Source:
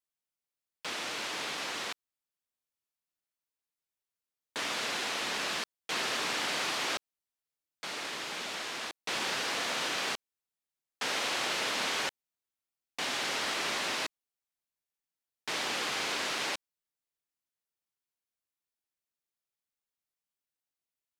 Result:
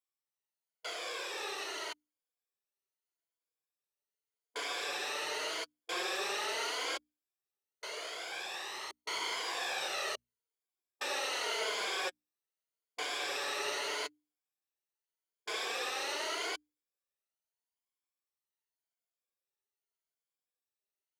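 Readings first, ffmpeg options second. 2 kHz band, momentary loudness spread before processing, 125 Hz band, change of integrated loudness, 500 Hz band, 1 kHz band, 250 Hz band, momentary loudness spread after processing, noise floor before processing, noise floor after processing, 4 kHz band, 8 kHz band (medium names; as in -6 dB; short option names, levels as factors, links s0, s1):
-4.0 dB, 8 LU, under -15 dB, -4.0 dB, -0.5 dB, -3.0 dB, -8.0 dB, 9 LU, under -85 dBFS, under -85 dBFS, -4.0 dB, -4.5 dB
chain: -af "afftfilt=real='re*pow(10,10/40*sin(2*PI*(1.8*log(max(b,1)*sr/1024/100)/log(2)-(0.83)*(pts-256)/sr)))':imag='im*pow(10,10/40*sin(2*PI*(1.8*log(max(b,1)*sr/1024/100)/log(2)-(0.83)*(pts-256)/sr)))':win_size=1024:overlap=0.75,lowshelf=f=300:t=q:w=3:g=-9,bandreject=f=60:t=h:w=6,bandreject=f=120:t=h:w=6,bandreject=f=180:t=h:w=6,bandreject=f=240:t=h:w=6,bandreject=f=300:t=h:w=6,flanger=delay=0.9:depth=6.1:regen=26:speed=0.11:shape=sinusoidal,volume=0.794"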